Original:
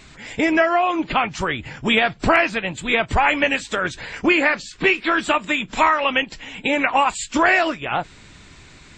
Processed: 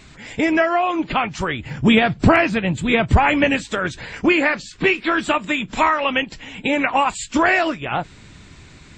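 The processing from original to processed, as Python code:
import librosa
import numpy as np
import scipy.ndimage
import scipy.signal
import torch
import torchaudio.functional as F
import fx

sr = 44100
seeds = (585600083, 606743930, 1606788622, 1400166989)

y = fx.peak_eq(x, sr, hz=120.0, db=fx.steps((0.0, 3.5), (1.7, 13.0), (3.62, 5.5)), octaves=3.0)
y = y * librosa.db_to_amplitude(-1.0)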